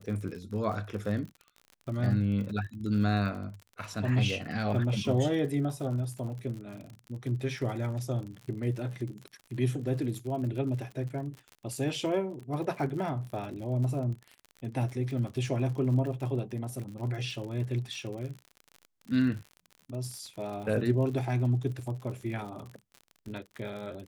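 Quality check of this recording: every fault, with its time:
crackle 55/s -38 dBFS

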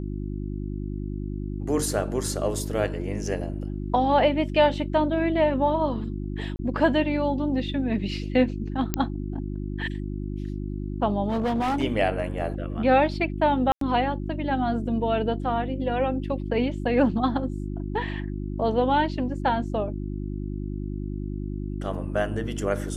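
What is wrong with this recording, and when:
hum 50 Hz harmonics 7 -31 dBFS
6.56–6.59 gap 30 ms
8.94 pop -8 dBFS
11.28–11.84 clipped -21.5 dBFS
13.72–13.81 gap 93 ms

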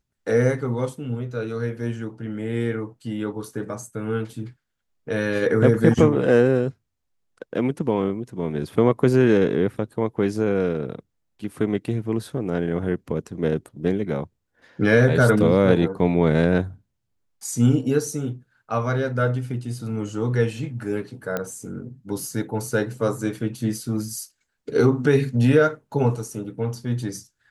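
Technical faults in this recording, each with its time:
21.37 pop -12 dBFS

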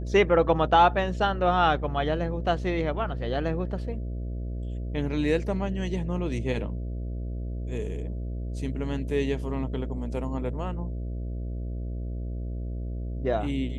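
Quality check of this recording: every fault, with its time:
buzz 60 Hz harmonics 11 -32 dBFS

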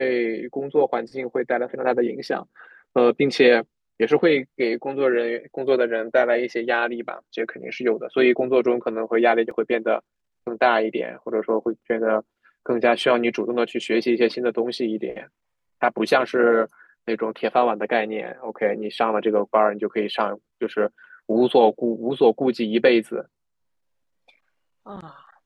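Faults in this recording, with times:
9.51 gap 2.5 ms

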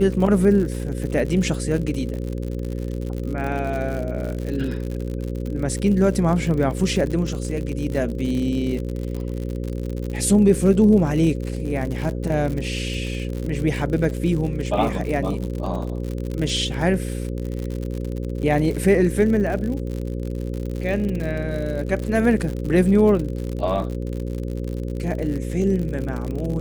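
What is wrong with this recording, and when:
buzz 60 Hz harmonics 9 -27 dBFS
crackle 74/s -27 dBFS

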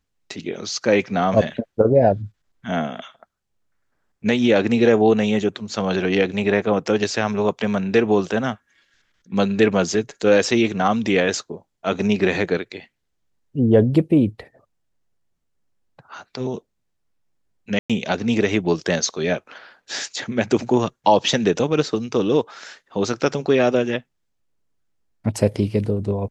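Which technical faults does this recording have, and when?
17.79–17.9 gap 0.106 s

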